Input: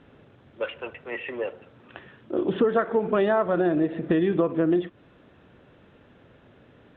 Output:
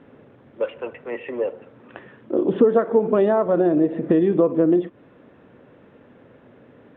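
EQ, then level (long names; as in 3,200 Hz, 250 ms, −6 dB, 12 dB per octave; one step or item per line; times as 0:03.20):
graphic EQ with 10 bands 125 Hz +6 dB, 250 Hz +10 dB, 500 Hz +10 dB, 1,000 Hz +7 dB, 2,000 Hz +7 dB
dynamic equaliser 1,800 Hz, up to −7 dB, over −32 dBFS, Q 1.1
−6.5 dB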